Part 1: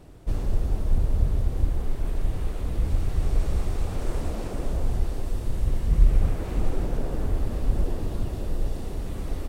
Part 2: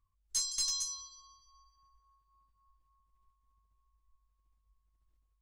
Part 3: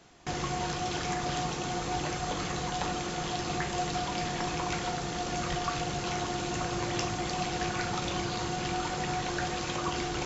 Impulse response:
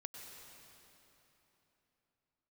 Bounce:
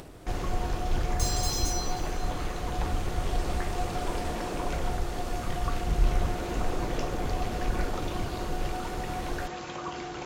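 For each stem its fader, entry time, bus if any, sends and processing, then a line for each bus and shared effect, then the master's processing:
+1.5 dB, 0.00 s, no send, upward compressor, threshold -36 dBFS
-12.5 dB, 0.85 s, send -3.5 dB, waveshaping leveller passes 5
-1.0 dB, 0.00 s, no send, treble shelf 2.4 kHz -9.5 dB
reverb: on, RT60 3.5 s, pre-delay 91 ms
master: bass shelf 230 Hz -8.5 dB

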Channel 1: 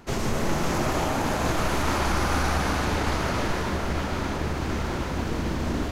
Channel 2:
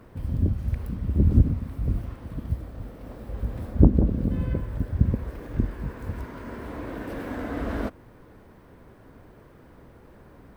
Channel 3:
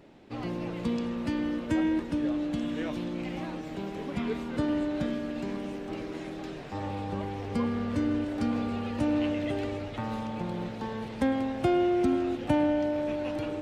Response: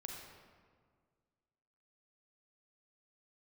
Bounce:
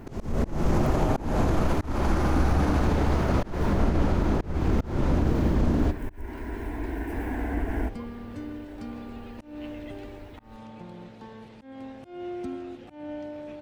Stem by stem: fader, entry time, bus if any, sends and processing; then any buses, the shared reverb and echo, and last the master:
-1.5 dB, 0.00 s, send -11 dB, tilt shelf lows +7 dB; peak limiter -15 dBFS, peak gain reduction 7 dB
+2.0 dB, 0.00 s, send -12.5 dB, octave divider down 2 oct, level +2 dB; compression, threshold -24 dBFS, peak gain reduction 17 dB; static phaser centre 810 Hz, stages 8
-9.0 dB, 0.40 s, no send, none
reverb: on, RT60 1.8 s, pre-delay 34 ms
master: slow attack 236 ms

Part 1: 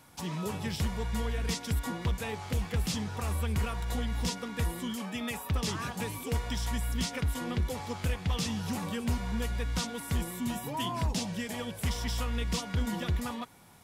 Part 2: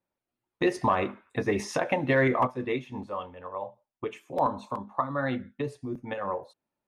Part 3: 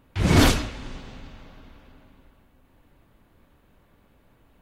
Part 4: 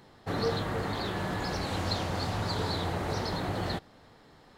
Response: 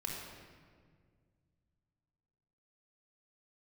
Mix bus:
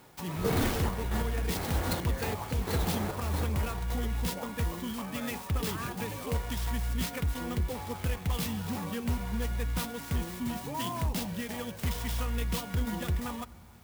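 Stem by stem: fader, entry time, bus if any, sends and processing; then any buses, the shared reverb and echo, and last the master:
-1.0 dB, 0.00 s, send -19 dB, none
-11.0 dB, 0.00 s, no send, compression, threshold -29 dBFS, peak gain reduction 10 dB
-13.5 dB, 0.20 s, no send, none
-4.0 dB, 0.00 s, send -10.5 dB, trance gate "x...xxxx.." 135 bpm -12 dB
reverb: on, RT60 1.9 s, pre-delay 24 ms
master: sampling jitter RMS 0.042 ms

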